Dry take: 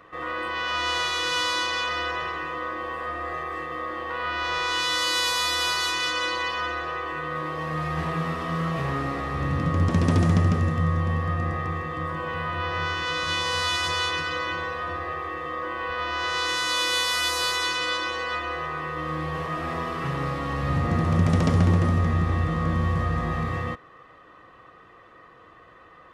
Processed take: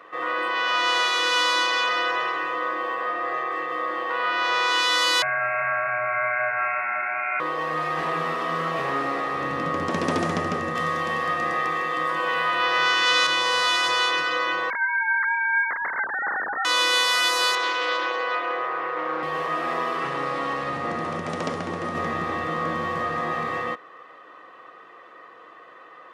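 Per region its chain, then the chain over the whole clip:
2.94–3.67 Bessel low-pass 6500 Hz + crackle 210/s -56 dBFS
5.22–7.4 inverted band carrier 2600 Hz + notch 1200 Hz, Q 9.9
10.75–13.27 HPF 110 Hz + high shelf 2400 Hz +10.5 dB
14.7–16.65 sine-wave speech + inverted band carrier 2800 Hz
17.55–19.23 BPF 420–7800 Hz + tilt -3 dB/oct + Doppler distortion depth 0.22 ms
19.98–21.95 steep low-pass 11000 Hz 48 dB/oct + compressor 2:1, threshold -24 dBFS
whole clip: HPF 370 Hz 12 dB/oct; high shelf 5200 Hz -5.5 dB; gain +5 dB

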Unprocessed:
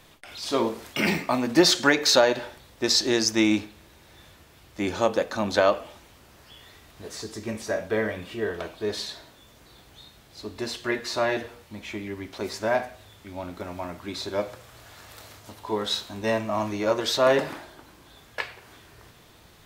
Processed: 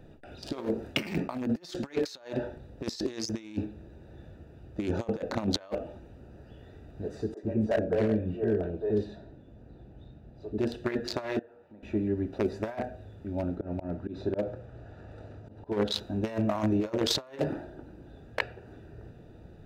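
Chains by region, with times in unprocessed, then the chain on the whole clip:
7.34–10.58 high shelf 3500 Hz -11.5 dB + three bands offset in time mids, highs, lows 30/90 ms, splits 450/1400 Hz
11.39–11.83 band-pass 1100 Hz, Q 0.75 + compressor 3:1, threshold -53 dBFS
13.55–15.92 LPF 8600 Hz + high shelf 4100 Hz -7.5 dB + auto swell 0.118 s
whole clip: Wiener smoothing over 41 samples; negative-ratio compressor -31 dBFS, ratio -0.5; gain +1.5 dB

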